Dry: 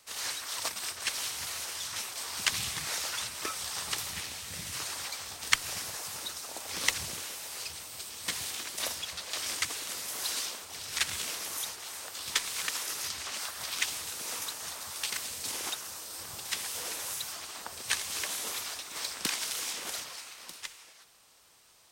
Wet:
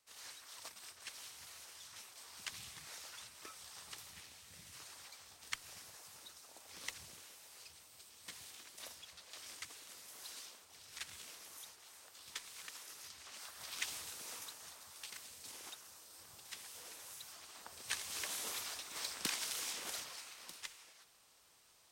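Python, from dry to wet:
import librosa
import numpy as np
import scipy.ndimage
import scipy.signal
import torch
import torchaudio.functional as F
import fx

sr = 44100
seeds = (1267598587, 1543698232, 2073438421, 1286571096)

y = fx.gain(x, sr, db=fx.line((13.16, -17.0), (13.95, -8.5), (14.86, -15.5), (17.1, -15.5), (18.38, -6.5)))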